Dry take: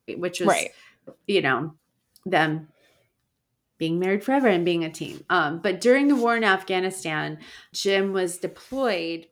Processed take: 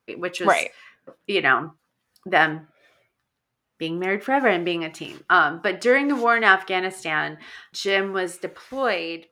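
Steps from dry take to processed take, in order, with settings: peaking EQ 1.4 kHz +12.5 dB 2.9 oct; trim -6.5 dB

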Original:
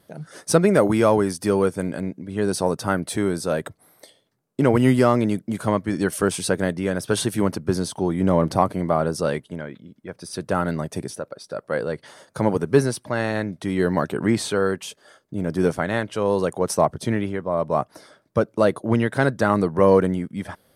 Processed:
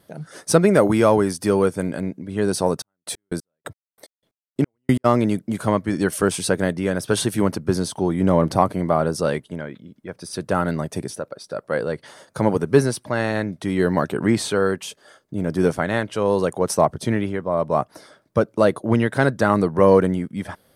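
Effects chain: 2.76–5.04 s: trance gate "x...x..x..." 181 bpm -60 dB; trim +1.5 dB

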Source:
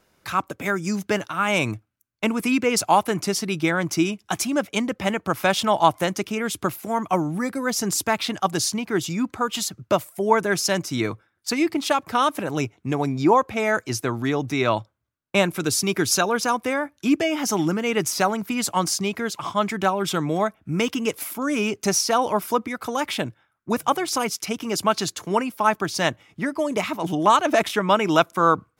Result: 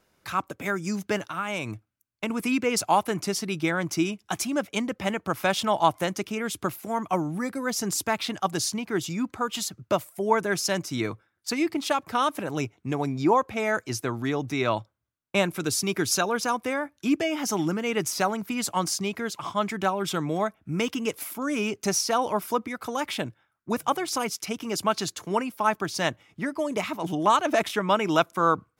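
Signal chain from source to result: 1.21–2.30 s: compression, threshold -22 dBFS, peak gain reduction 6 dB; trim -4 dB

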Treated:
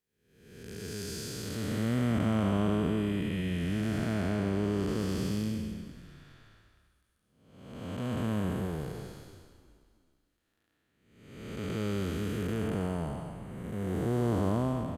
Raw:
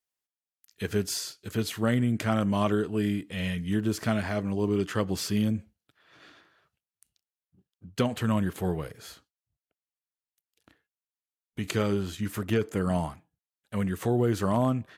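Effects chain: spectral blur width 577 ms; frequency-shifting echo 322 ms, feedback 46%, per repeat -37 Hz, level -15.5 dB

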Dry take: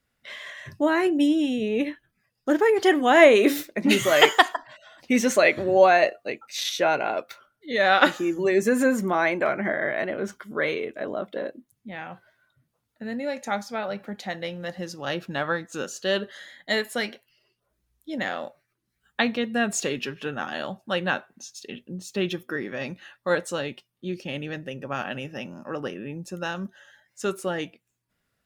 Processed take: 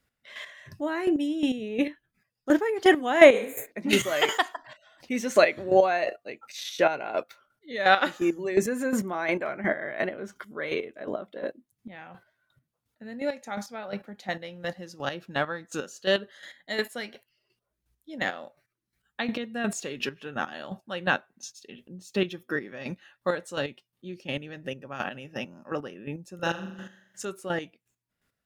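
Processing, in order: 3.36–3.69 s: spectral replace 260–6300 Hz both; 26.35–27.25 s: flutter echo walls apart 7.2 m, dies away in 0.75 s; square tremolo 2.8 Hz, depth 65%, duty 25%; trim +1 dB

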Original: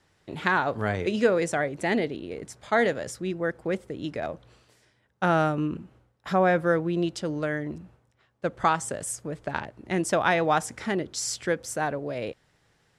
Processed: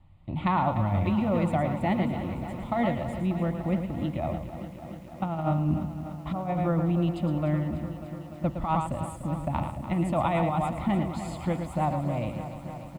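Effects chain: tilt EQ -4 dB/octave; on a send: delay 112 ms -8 dB; on the sum: dynamic bell 110 Hz, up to -4 dB, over -32 dBFS, Q 0.82; static phaser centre 1.6 kHz, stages 6; compressor with a negative ratio -24 dBFS, ratio -0.5; bit-crushed delay 295 ms, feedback 80%, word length 9-bit, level -12 dB

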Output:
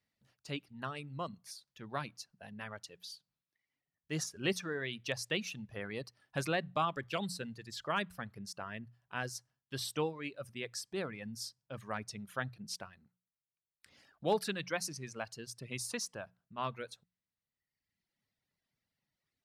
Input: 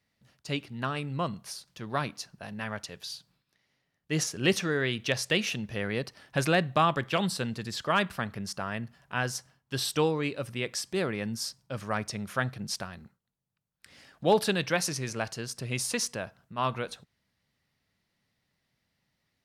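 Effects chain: reverb removal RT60 1.3 s; hum notches 60/120/180 Hz; trim -8 dB

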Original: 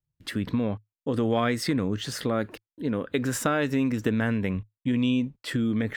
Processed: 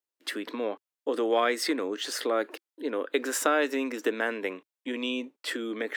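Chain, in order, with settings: steep high-pass 310 Hz 36 dB/octave; trim +1.5 dB

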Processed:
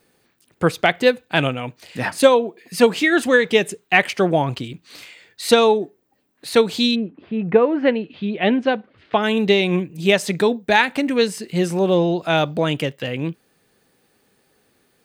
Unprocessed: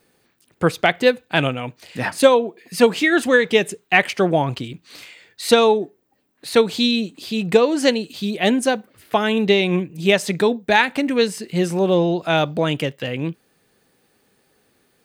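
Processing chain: 6.94–9.22 s: low-pass 1.6 kHz -> 4.3 kHz 24 dB/octave

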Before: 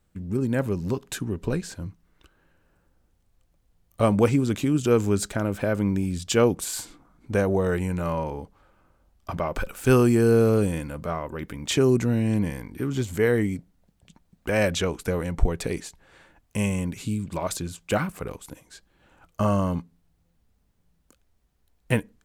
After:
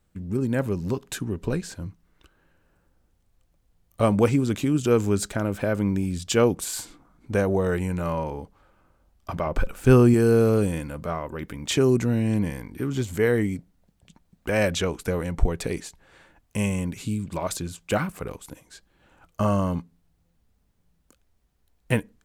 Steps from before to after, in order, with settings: 9.46–10.14 s: tilt EQ -1.5 dB/octave

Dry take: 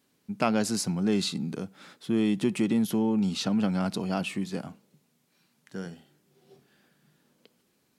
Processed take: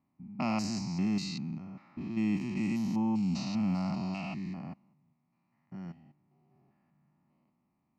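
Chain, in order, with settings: spectrogram pixelated in time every 200 ms; level-controlled noise filter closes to 1.2 kHz, open at -23 dBFS; static phaser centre 2.3 kHz, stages 8

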